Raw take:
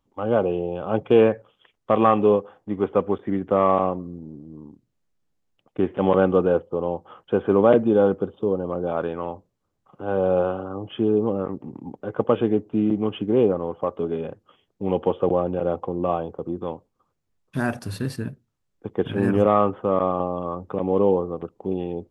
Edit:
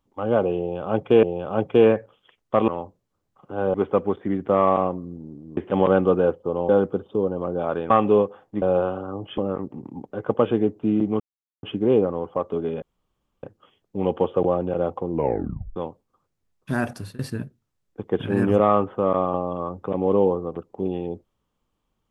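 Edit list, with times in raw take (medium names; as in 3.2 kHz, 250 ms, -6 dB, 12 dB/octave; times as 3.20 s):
0.59–1.23 s: loop, 2 plays
2.04–2.76 s: swap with 9.18–10.24 s
4.59–5.84 s: delete
6.96–7.97 s: delete
11.00–11.28 s: delete
13.10 s: insert silence 0.43 s
14.29 s: insert room tone 0.61 s
15.97 s: tape stop 0.65 s
17.79–18.05 s: fade out, to -23 dB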